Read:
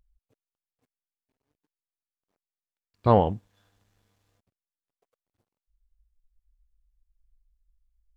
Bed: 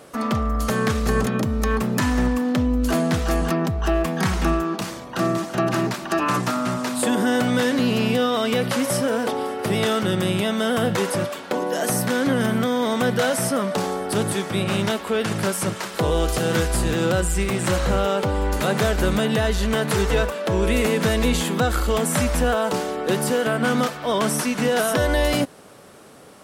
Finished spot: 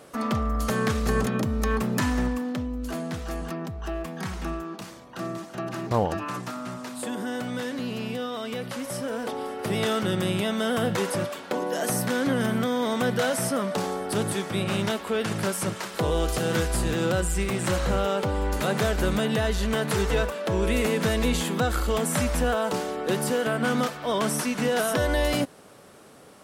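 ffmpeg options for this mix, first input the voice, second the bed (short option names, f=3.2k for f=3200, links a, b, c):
-filter_complex "[0:a]adelay=2850,volume=-5dB[a];[1:a]volume=3.5dB,afade=t=out:st=2.01:d=0.69:silence=0.421697,afade=t=in:st=8.84:d=1.07:silence=0.446684[b];[a][b]amix=inputs=2:normalize=0"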